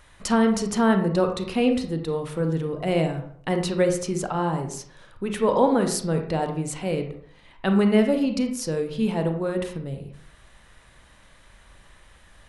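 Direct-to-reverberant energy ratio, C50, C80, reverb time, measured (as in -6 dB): 5.0 dB, 7.0 dB, 11.0 dB, 0.60 s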